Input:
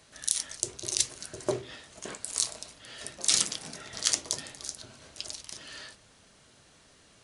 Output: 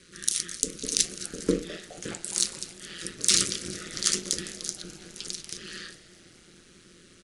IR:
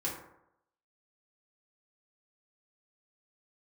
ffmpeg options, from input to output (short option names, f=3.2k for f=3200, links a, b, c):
-filter_complex "[0:a]asuperstop=centerf=770:order=12:qfactor=1.1,equalizer=f=270:t=o:w=0.38:g=12.5,aeval=exprs='val(0)*sin(2*PI*85*n/s)':c=same,asplit=6[a][b][c][d][e][f];[b]adelay=208,afreqshift=130,volume=-19dB[g];[c]adelay=416,afreqshift=260,volume=-23.3dB[h];[d]adelay=624,afreqshift=390,volume=-27.6dB[i];[e]adelay=832,afreqshift=520,volume=-31.9dB[j];[f]adelay=1040,afreqshift=650,volume=-36.2dB[k];[a][g][h][i][j][k]amix=inputs=6:normalize=0,acontrast=65"